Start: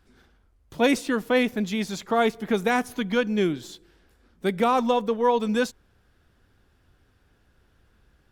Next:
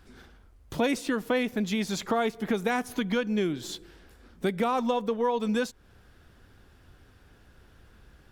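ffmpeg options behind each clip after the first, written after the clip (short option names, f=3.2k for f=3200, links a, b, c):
-af "acompressor=threshold=-34dB:ratio=3,volume=6.5dB"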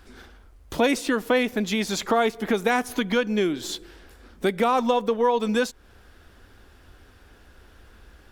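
-af "equalizer=f=140:t=o:w=0.97:g=-9.5,volume=6dB"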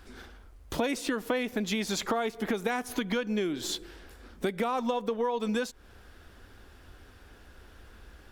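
-af "acompressor=threshold=-26dB:ratio=4,volume=-1dB"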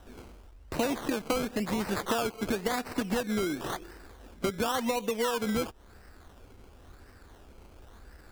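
-af "acrusher=samples=19:mix=1:aa=0.000001:lfo=1:lforange=11.4:lforate=0.95"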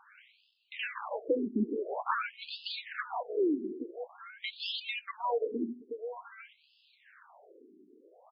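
-af "aecho=1:1:832:0.251,afftfilt=real='re*between(b*sr/1024,290*pow(3700/290,0.5+0.5*sin(2*PI*0.48*pts/sr))/1.41,290*pow(3700/290,0.5+0.5*sin(2*PI*0.48*pts/sr))*1.41)':imag='im*between(b*sr/1024,290*pow(3700/290,0.5+0.5*sin(2*PI*0.48*pts/sr))/1.41,290*pow(3700/290,0.5+0.5*sin(2*PI*0.48*pts/sr))*1.41)':win_size=1024:overlap=0.75,volume=4dB"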